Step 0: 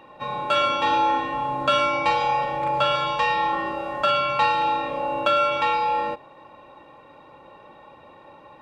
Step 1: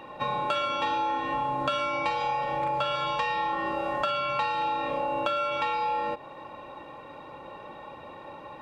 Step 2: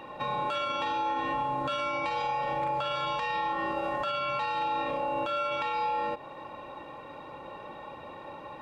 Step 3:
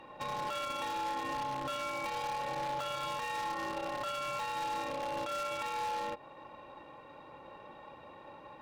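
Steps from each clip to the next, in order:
compressor, threshold -30 dBFS, peak gain reduction 13.5 dB; gain +4 dB
limiter -22.5 dBFS, peak gain reduction 9 dB
added harmonics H 3 -16 dB, 6 -24 dB, 8 -25 dB, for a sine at -22 dBFS; wavefolder -26.5 dBFS; gain -2.5 dB

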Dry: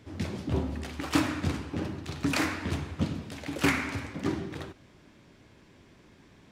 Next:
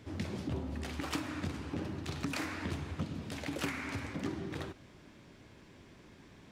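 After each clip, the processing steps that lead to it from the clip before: compressor 6:1, threshold -34 dBFS, peak gain reduction 14.5 dB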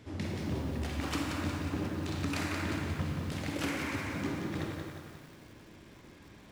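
on a send at -1.5 dB: reverb RT60 1.6 s, pre-delay 27 ms; on the sum: lo-fi delay 0.179 s, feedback 55%, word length 9-bit, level -6 dB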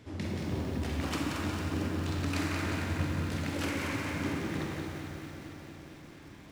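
echo with dull and thin repeats by turns 0.113 s, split 1000 Hz, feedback 86%, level -6.5 dB

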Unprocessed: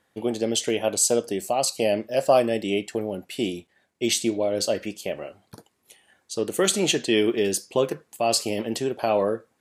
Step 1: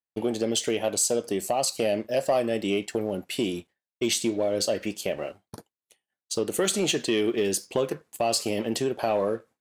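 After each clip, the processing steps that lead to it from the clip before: expander -42 dBFS; compressor 2:1, threshold -29 dBFS, peak gain reduction 9 dB; sample leveller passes 1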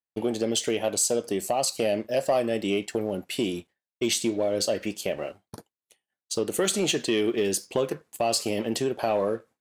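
nothing audible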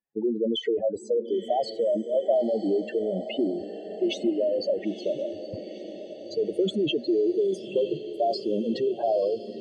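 spectral contrast raised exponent 3.5; air absorption 300 m; diffused feedback echo 0.945 s, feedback 63%, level -12.5 dB; gain +2.5 dB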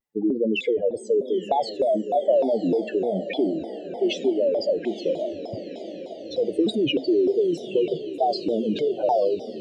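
on a send at -18 dB: reverb, pre-delay 3 ms; on the sum: shaped vibrato saw down 3.3 Hz, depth 250 cents; gain +3 dB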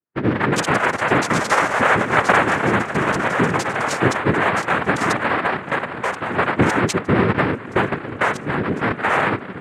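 Wiener smoothing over 25 samples; echoes that change speed 0.229 s, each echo +6 st, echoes 3; noise vocoder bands 3; gain +3.5 dB

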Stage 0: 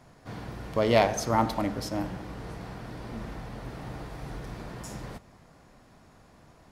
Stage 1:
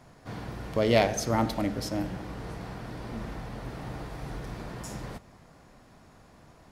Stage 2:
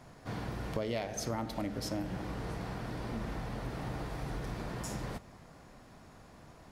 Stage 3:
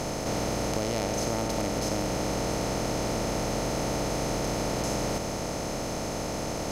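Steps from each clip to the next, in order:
dynamic EQ 1000 Hz, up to -7 dB, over -43 dBFS, Q 1.6; gain +1 dB
compressor 8:1, threshold -32 dBFS, peak gain reduction 15 dB
per-bin compression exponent 0.2

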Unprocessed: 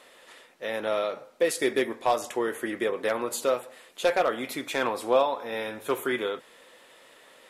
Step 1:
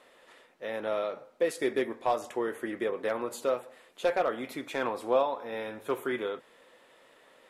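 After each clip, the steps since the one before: high shelf 2600 Hz -8 dB; gain -3 dB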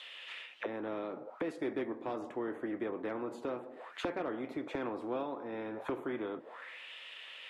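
auto-wah 310–3500 Hz, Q 5.3, down, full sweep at -34 dBFS; spectral compressor 2:1; gain +6.5 dB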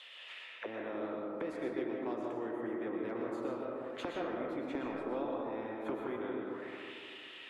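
digital reverb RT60 2.2 s, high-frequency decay 0.3×, pre-delay 80 ms, DRR -0.5 dB; gain -4 dB

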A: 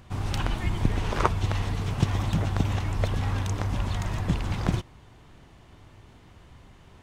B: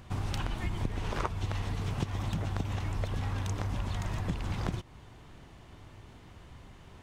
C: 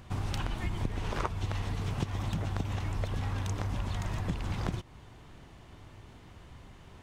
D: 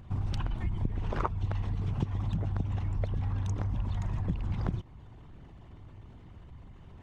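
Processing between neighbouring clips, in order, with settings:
compressor 4:1, threshold -30 dBFS, peak gain reduction 12.5 dB
nothing audible
formant sharpening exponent 1.5; gain +2 dB

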